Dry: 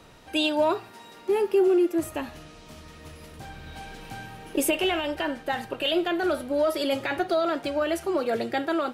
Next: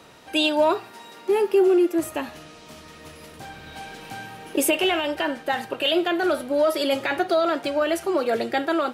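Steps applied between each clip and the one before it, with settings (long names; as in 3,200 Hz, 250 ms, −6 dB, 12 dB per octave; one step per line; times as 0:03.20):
high-pass filter 210 Hz 6 dB per octave
level +4 dB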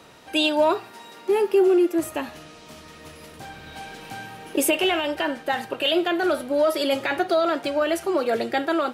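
no processing that can be heard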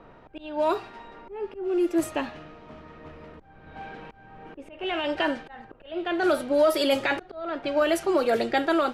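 volume swells 471 ms
background noise brown −57 dBFS
low-pass that shuts in the quiet parts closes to 1,300 Hz, open at −18.5 dBFS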